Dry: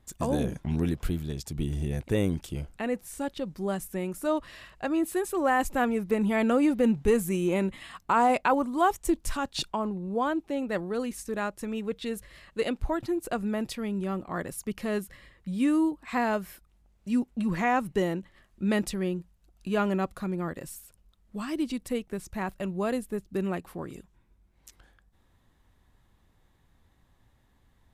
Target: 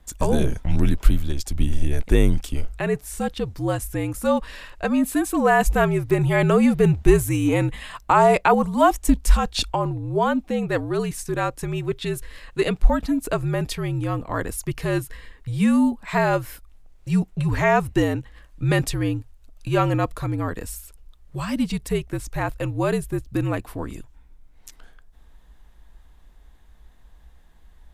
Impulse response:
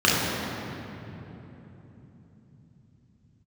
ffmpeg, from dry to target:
-af "lowshelf=f=120:t=q:w=1.5:g=8.5,afreqshift=-64,volume=2.37"

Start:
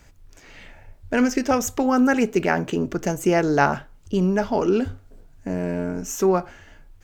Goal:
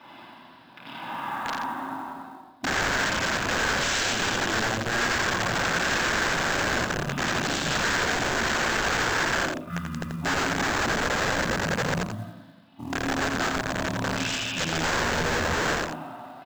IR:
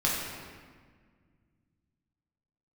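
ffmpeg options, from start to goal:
-filter_complex "[1:a]atrim=start_sample=2205,afade=t=out:st=0.28:d=0.01,atrim=end_sample=12789,asetrate=26019,aresample=44100[s0];[0:a][s0]afir=irnorm=-1:irlink=0,areverse,acompressor=threshold=0.1:ratio=5,areverse,asetrate=18846,aresample=44100,highpass=f=140:w=0.5412,highpass=f=140:w=1.3066,equalizer=f=260:t=q:w=4:g=6,equalizer=f=420:t=q:w=4:g=-9,equalizer=f=990:t=q:w=4:g=9,equalizer=f=1600:t=q:w=4:g=3,equalizer=f=3800:t=q:w=4:g=9,lowpass=f=5500:w=0.5412,lowpass=f=5500:w=1.3066,aresample=16000,aeval=exprs='(mod(10.6*val(0)+1,2)-1)/10.6':c=same,aresample=44100,equalizer=f=1600:w=3.7:g=9,bandreject=f=50:t=h:w=6,bandreject=f=100:t=h:w=6,bandreject=f=150:t=h:w=6,bandreject=f=200:t=h:w=6,bandreject=f=250:t=h:w=6,bandreject=f=300:t=h:w=6,acrusher=bits=6:mode=log:mix=0:aa=0.000001,aecho=1:1:86:0.501,volume=0.75"

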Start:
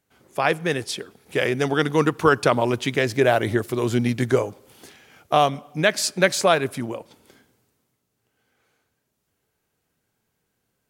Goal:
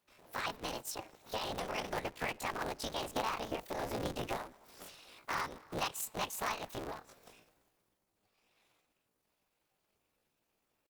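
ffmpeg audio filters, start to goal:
-af "highpass=110,acompressor=threshold=0.0178:ratio=2.5,afftfilt=real='hypot(re,im)*cos(2*PI*random(0))':imag='hypot(re,im)*sin(2*PI*random(1))':win_size=512:overlap=0.75,asetrate=72056,aresample=44100,atempo=0.612027,aeval=exprs='val(0)*sgn(sin(2*PI*110*n/s))':c=same,volume=1.12"

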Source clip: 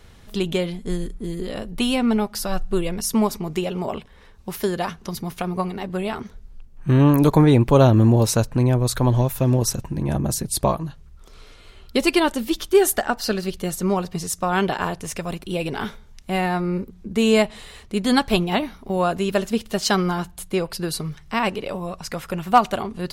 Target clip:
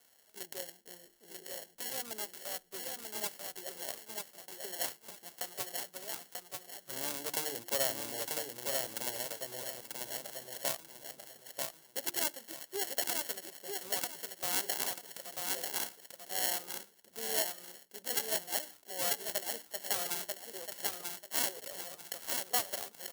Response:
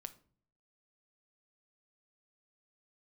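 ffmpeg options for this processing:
-filter_complex "[0:a]acrossover=split=560 2500:gain=0.141 1 0.0891[s0][s1][s2];[s0][s1][s2]amix=inputs=3:normalize=0,bandreject=f=50:t=h:w=6,bandreject=f=100:t=h:w=6,bandreject=f=150:t=h:w=6,bandreject=f=200:t=h:w=6,bandreject=f=250:t=h:w=6,bandreject=f=300:t=h:w=6,bandreject=f=350:t=h:w=6,acrossover=split=810[s3][s4];[s4]acrusher=samples=36:mix=1:aa=0.000001[s5];[s3][s5]amix=inputs=2:normalize=0,aderivative,asplit=2[s6][s7];[s7]aecho=0:1:940|1880|2820:0.631|0.158|0.0394[s8];[s6][s8]amix=inputs=2:normalize=0,alimiter=level_in=5.96:limit=0.891:release=50:level=0:latency=1,volume=0.422"

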